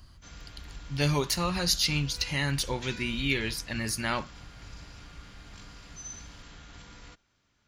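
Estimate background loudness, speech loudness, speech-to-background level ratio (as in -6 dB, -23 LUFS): -47.0 LUFS, -28.5 LUFS, 18.5 dB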